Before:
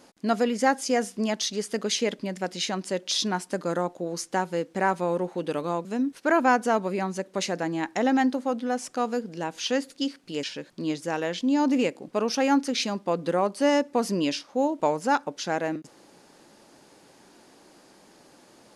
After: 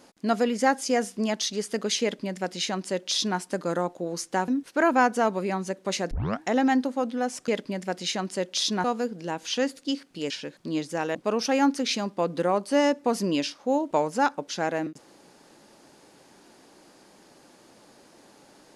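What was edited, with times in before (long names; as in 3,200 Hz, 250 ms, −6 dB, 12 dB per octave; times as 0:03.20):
0:02.02–0:03.38: duplicate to 0:08.97
0:04.48–0:05.97: remove
0:07.60: tape start 0.31 s
0:11.28–0:12.04: remove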